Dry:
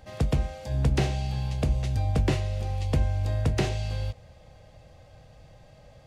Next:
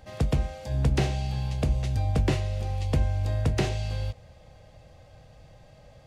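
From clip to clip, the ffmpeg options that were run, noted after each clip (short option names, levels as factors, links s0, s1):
-af anull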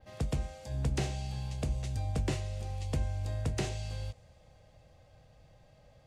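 -af "adynamicequalizer=threshold=0.00126:dfrequency=8000:dqfactor=1:tfrequency=8000:tqfactor=1:attack=5:release=100:ratio=0.375:range=4:mode=boostabove:tftype=bell,volume=0.398"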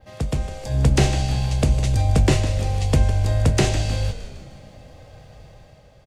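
-filter_complex "[0:a]dynaudnorm=f=110:g=11:m=2.24,asplit=7[s0][s1][s2][s3][s4][s5][s6];[s1]adelay=155,afreqshift=-61,volume=0.266[s7];[s2]adelay=310,afreqshift=-122,volume=0.141[s8];[s3]adelay=465,afreqshift=-183,volume=0.075[s9];[s4]adelay=620,afreqshift=-244,volume=0.0398[s10];[s5]adelay=775,afreqshift=-305,volume=0.0209[s11];[s6]adelay=930,afreqshift=-366,volume=0.0111[s12];[s0][s7][s8][s9][s10][s11][s12]amix=inputs=7:normalize=0,volume=2.51"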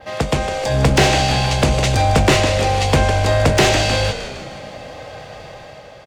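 -filter_complex "[0:a]asplit=2[s0][s1];[s1]highpass=f=720:p=1,volume=14.1,asoftclip=type=tanh:threshold=0.596[s2];[s0][s2]amix=inputs=2:normalize=0,lowpass=f=3000:p=1,volume=0.501,volume=1.19"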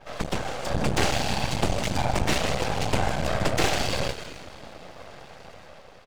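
-af "afftfilt=real='hypot(re,im)*cos(2*PI*random(0))':imag='hypot(re,im)*sin(2*PI*random(1))':win_size=512:overlap=0.75,aeval=exprs='max(val(0),0)':c=same"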